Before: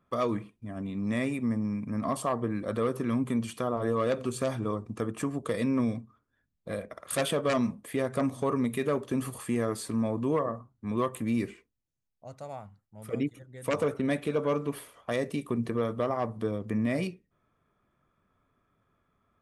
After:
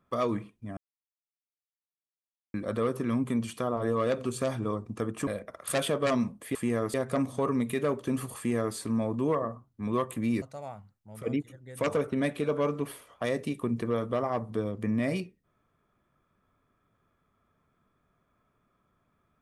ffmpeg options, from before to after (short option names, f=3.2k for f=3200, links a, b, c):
-filter_complex "[0:a]asplit=7[a][b][c][d][e][f][g];[a]atrim=end=0.77,asetpts=PTS-STARTPTS,afade=t=out:st=0.766:d=0.004:c=hsin[h];[b]atrim=start=0.77:end=2.54,asetpts=PTS-STARTPTS,volume=0[i];[c]atrim=start=2.54:end=5.272,asetpts=PTS-STARTPTS,afade=t=in:d=0.004:c=hsin[j];[d]atrim=start=6.698:end=7.982[k];[e]atrim=start=9.408:end=9.802[l];[f]atrim=start=7.978:end=11.462[m];[g]atrim=start=12.288[n];[h][i][j]concat=n=3:v=0:a=1[o];[o][k]acrossfade=d=0.004:c1=hsin:c2=hsin[p];[p][l]acrossfade=d=0.004:c1=hsin:c2=hsin[q];[q][m]acrossfade=d=0.004:c1=hsin:c2=hsin[r];[r][n]acrossfade=d=0.004:c1=hsin:c2=hsin"